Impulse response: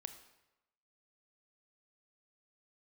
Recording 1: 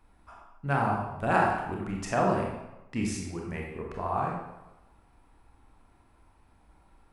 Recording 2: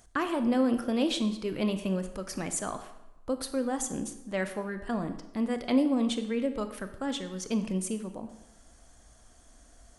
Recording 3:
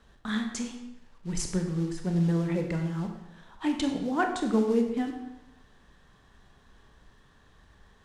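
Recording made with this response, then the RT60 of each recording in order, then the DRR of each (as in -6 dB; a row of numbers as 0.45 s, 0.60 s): 2; 1.0 s, 1.0 s, 1.0 s; -1.5 dB, 8.5 dB, 3.5 dB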